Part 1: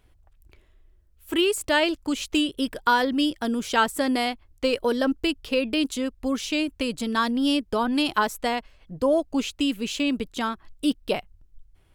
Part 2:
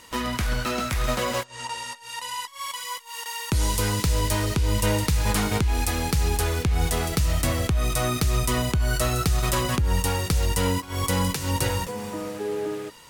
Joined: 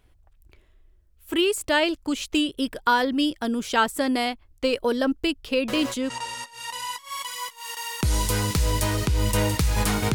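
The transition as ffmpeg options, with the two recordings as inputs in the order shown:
-filter_complex "[1:a]asplit=2[s0][s1];[0:a]apad=whole_dur=10.14,atrim=end=10.14,atrim=end=6.102[s2];[s1]atrim=start=1.588:end=5.63[s3];[s0]atrim=start=1.17:end=1.59,asetpts=PTS-STARTPTS,volume=0.447,afade=t=in:d=0.004:c=hsin,afade=t=out:st=0.416:d=0.004:c=hsin,adelay=5680[s4];[s2][s3]acrossfade=d=0.004:c1=hsin:c2=hsin[s5];[s5][s4]amix=inputs=2:normalize=0"

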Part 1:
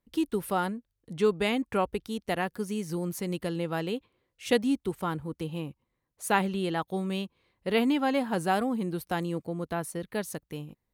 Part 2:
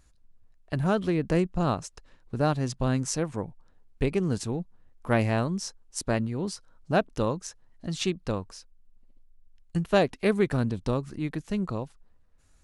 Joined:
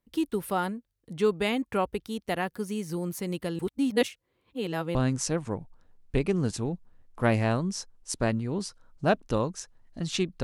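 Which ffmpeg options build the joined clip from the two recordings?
-filter_complex "[0:a]apad=whole_dur=10.43,atrim=end=10.43,asplit=2[s0][s1];[s0]atrim=end=3.592[s2];[s1]atrim=start=3.588:end=4.952,asetpts=PTS-STARTPTS,areverse[s3];[1:a]atrim=start=2.818:end=8.3[s4];[s2][s3]acrossfade=d=0.004:c1=hsin:c2=hsin[s5];[s5][s4]acrossfade=d=0.004:c1=hsin:c2=hsin"

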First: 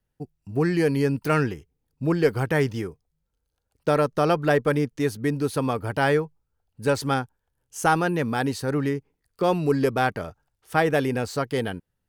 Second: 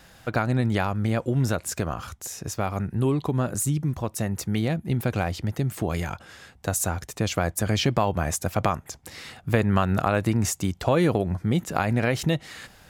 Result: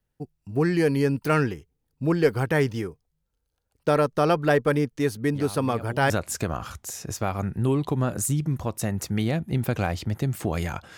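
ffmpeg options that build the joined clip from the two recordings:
-filter_complex "[1:a]asplit=2[s0][s1];[0:a]apad=whole_dur=10.97,atrim=end=10.97,atrim=end=6.102[s2];[s1]atrim=start=1.468:end=6.34[s3];[s0]atrim=start=0.72:end=1.47,asetpts=PTS-STARTPTS,volume=0.188,afade=t=in:d=0.004:c=hsin,afade=t=out:st=0.746:d=0.004:c=hsin,adelay=5350[s4];[s2][s3]acrossfade=d=0.004:c1=hsin:c2=hsin[s5];[s5][s4]amix=inputs=2:normalize=0"

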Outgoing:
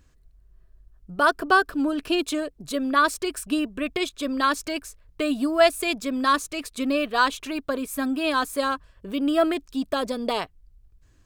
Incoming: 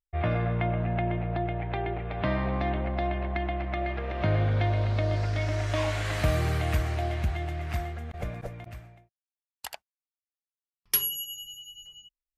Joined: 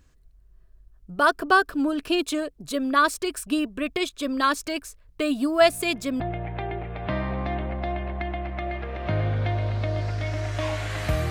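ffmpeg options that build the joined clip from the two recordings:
-filter_complex "[1:a]asplit=2[s0][s1];[0:a]apad=whole_dur=11.3,atrim=end=11.3,atrim=end=6.202[s2];[s1]atrim=start=1.348:end=6.45[s3];[s0]atrim=start=0.76:end=1.35,asetpts=PTS-STARTPTS,volume=0.141,afade=t=in:d=0.004:c=hsin,afade=t=out:st=0.586:d=0.004:c=hsin,adelay=247401S[s4];[s2][s3]acrossfade=d=0.004:c1=hsin:c2=hsin[s5];[s5][s4]amix=inputs=2:normalize=0"

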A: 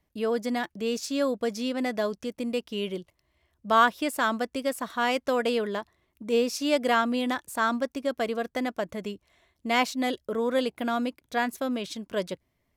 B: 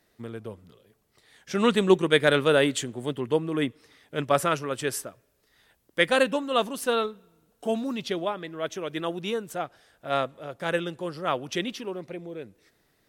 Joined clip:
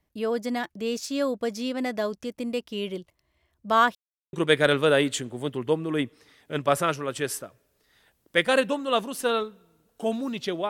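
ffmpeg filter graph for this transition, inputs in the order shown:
-filter_complex "[0:a]apad=whole_dur=10.69,atrim=end=10.69,asplit=2[s0][s1];[s0]atrim=end=3.95,asetpts=PTS-STARTPTS,afade=t=out:st=3.946:d=0.004:c=hsin[s2];[s1]atrim=start=3.95:end=4.33,asetpts=PTS-STARTPTS,volume=0[s3];[1:a]atrim=start=1.96:end=8.32,asetpts=PTS-STARTPTS,afade=t=in:d=0.004:c=hsin[s4];[s2][s3][s4]concat=n=3:v=0:a=1"

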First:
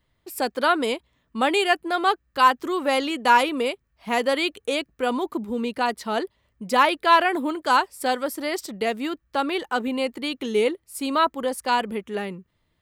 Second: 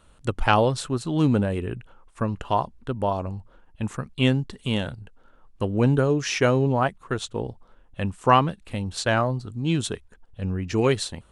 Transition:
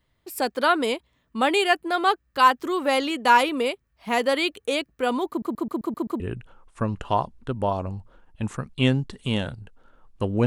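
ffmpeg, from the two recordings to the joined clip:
-filter_complex "[0:a]apad=whole_dur=10.46,atrim=end=10.46,asplit=7[s0][s1][s2][s3][s4][s5][s6];[s0]atrim=end=5.422[s7];[s1]atrim=start=5.288:end=5.422[s8];[s2]atrim=start=5.288:end=5.422[s9];[s3]atrim=start=5.288:end=5.422[s10];[s4]atrim=start=5.288:end=5.422[s11];[s5]atrim=start=5.288:end=5.422[s12];[s6]atrim=start=5.288:end=5.422[s13];[1:a]atrim=start=1.598:end=5.86[s14];[s7][s8]acrossfade=d=0.004:c1=hsin:c2=hsin[s15];[s15][s9]acrossfade=d=0.004:c1=hsin:c2=hsin[s16];[s16][s10]acrossfade=d=0.004:c1=hsin:c2=hsin[s17];[s17][s11]acrossfade=d=0.004:c1=hsin:c2=hsin[s18];[s18][s12]acrossfade=d=0.004:c1=hsin:c2=hsin[s19];[s19][s13]acrossfade=d=0.004:c1=hsin:c2=hsin[s20];[s20][s14]acrossfade=d=0.004:c1=hsin:c2=hsin"

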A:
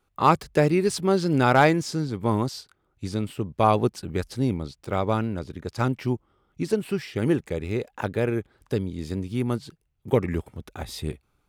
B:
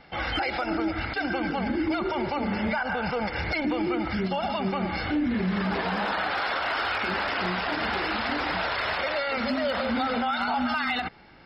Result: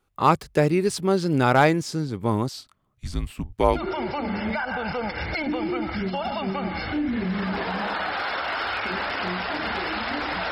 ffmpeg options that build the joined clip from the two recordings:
-filter_complex "[0:a]asettb=1/sr,asplit=3[s0][s1][s2];[s0]atrim=end=2.534[s3];[s1]atrim=start=2.53:end=3.85,asetpts=PTS-STARTPTS,afade=t=in:d=0.004:c=qsin,afade=t=out:st=1.316:d=0.004:c=qsin,afreqshift=-170[s4];[s2]atrim=start=3.846[s5];[s3][s4]acrossfade=d=0.004:c1=hsin:c2=qsin[s6];[s6][s5]acrossfade=d=0.004:c1=qsin:c2=hsin,apad=whole_dur=10.51,atrim=end=10.51,atrim=end=3.85,asetpts=PTS-STARTPTS[s7];[1:a]atrim=start=1.87:end=8.69,asetpts=PTS-STARTPTS[s8];[s7][s8]acrossfade=d=0.16:c1=tri:c2=tri"

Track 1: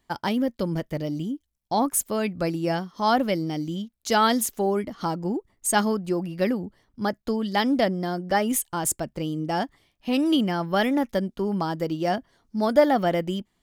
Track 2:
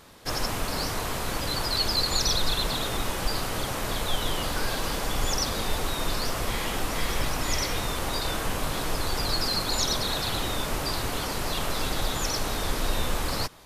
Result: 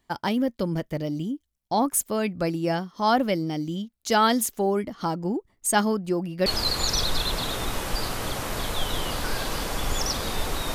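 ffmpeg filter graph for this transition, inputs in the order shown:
-filter_complex "[0:a]apad=whole_dur=10.74,atrim=end=10.74,atrim=end=6.462[s0];[1:a]atrim=start=1.778:end=6.06[s1];[s0][s1]acrossfade=d=0.004:c1=hsin:c2=hsin"

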